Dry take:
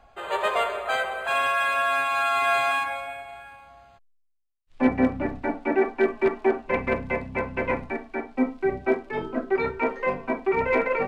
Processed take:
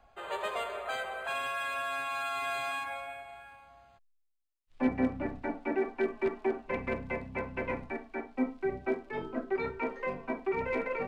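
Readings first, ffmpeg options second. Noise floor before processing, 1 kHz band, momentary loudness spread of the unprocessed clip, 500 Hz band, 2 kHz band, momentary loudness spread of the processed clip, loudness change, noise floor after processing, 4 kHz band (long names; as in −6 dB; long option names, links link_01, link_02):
−62 dBFS, −10.5 dB, 8 LU, −9.0 dB, −10.0 dB, 7 LU, −9.0 dB, −69 dBFS, −8.5 dB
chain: -filter_complex "[0:a]acrossover=split=400|3000[link_01][link_02][link_03];[link_02]acompressor=threshold=-26dB:ratio=6[link_04];[link_01][link_04][link_03]amix=inputs=3:normalize=0,volume=-7dB"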